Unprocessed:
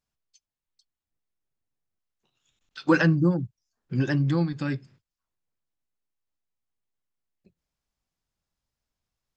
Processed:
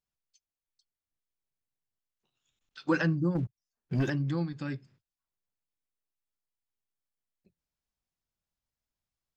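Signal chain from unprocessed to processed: 3.35–4.10 s: waveshaping leveller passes 2; trim -7 dB

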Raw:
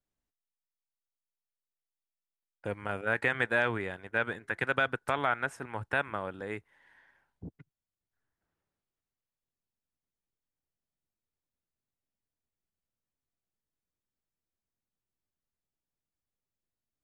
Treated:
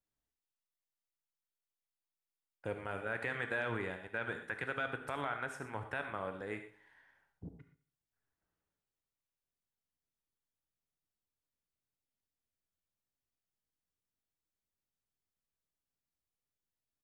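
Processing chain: peak limiter -20.5 dBFS, peak gain reduction 7 dB; feedback delay 70 ms, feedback 47%, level -17.5 dB; gated-style reverb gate 140 ms flat, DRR 6.5 dB; trim -4.5 dB

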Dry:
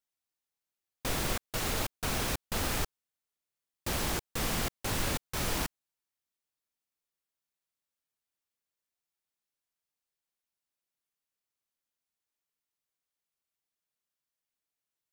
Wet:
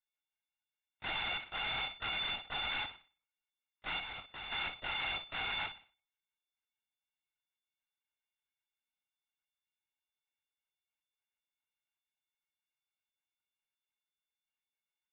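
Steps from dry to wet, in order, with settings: partials quantised in pitch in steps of 4 st; high-pass 570 Hz 24 dB/octave; in parallel at -9.5 dB: Schmitt trigger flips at -23.5 dBFS; 3.99–4.52 s: on the sum: level held to a coarse grid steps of 10 dB; on a send: flutter echo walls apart 9.5 m, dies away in 0.39 s; on the sum: LPC vocoder at 8 kHz whisper; trim -8.5 dB

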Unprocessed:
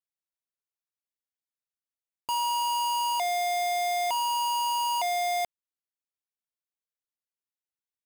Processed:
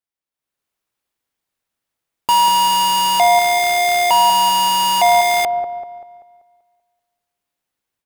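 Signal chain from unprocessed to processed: level rider gain up to 12.5 dB; in parallel at -7.5 dB: sample-rate reducer 8.4 kHz, jitter 0%; on the sum: feedback echo behind a low-pass 193 ms, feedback 43%, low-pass 920 Hz, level -5.5 dB

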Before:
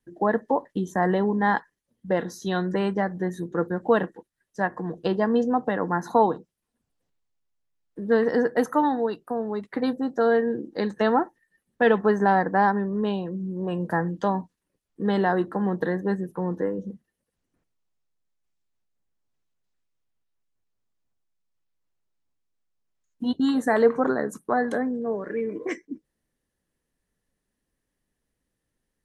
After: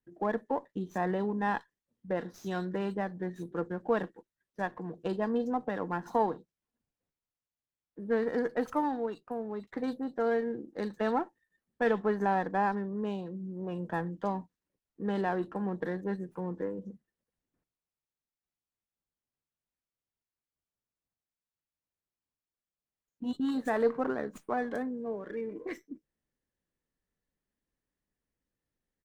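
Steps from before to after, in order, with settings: bands offset in time lows, highs 40 ms, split 3.7 kHz; sliding maximum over 3 samples; trim -8.5 dB

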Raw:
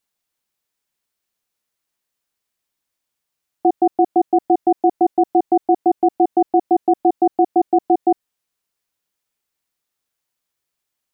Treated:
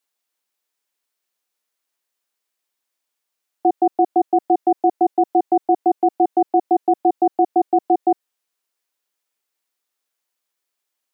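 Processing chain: high-pass 320 Hz 12 dB/octave

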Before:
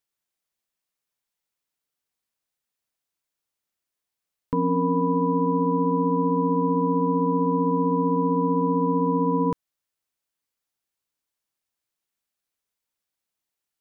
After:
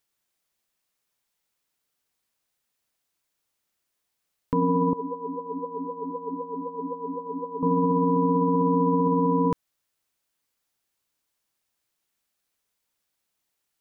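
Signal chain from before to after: peak limiter -20.5 dBFS, peak gain reduction 8 dB; 4.93–7.63 s: talking filter a-u 3.9 Hz; trim +6 dB

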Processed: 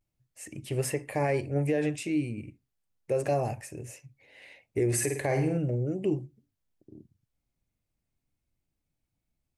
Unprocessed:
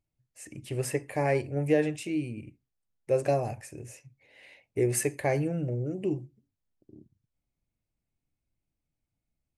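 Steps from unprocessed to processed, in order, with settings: 4.88–5.57 s: flutter echo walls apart 8.7 m, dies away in 0.44 s; vibrato 0.35 Hz 31 cents; peak limiter -20.5 dBFS, peak gain reduction 8 dB; trim +2 dB

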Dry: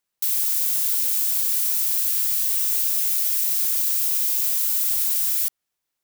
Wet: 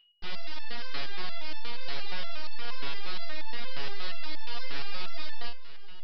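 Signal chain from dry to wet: full-wave rectifier; whistle 2.9 kHz -45 dBFS; resampled via 11.025 kHz; on a send: echo that smears into a reverb 465 ms, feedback 53%, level -15.5 dB; on the sum: resonator arpeggio 8.5 Hz 140–880 Hz; trim +3 dB

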